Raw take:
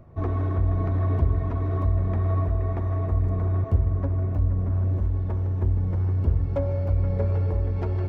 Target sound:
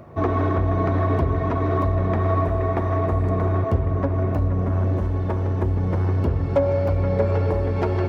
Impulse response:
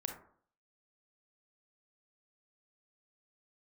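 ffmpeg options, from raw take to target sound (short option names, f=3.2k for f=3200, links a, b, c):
-filter_complex "[0:a]highpass=f=300:p=1,asplit=2[a][b];[b]alimiter=level_in=2dB:limit=-24dB:level=0:latency=1:release=195,volume=-2dB,volume=-0.5dB[c];[a][c]amix=inputs=2:normalize=0,volume=7dB"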